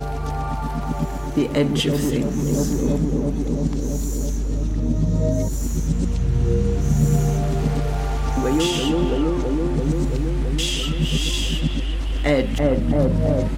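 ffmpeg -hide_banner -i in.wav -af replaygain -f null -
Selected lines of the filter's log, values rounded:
track_gain = +3.6 dB
track_peak = 0.346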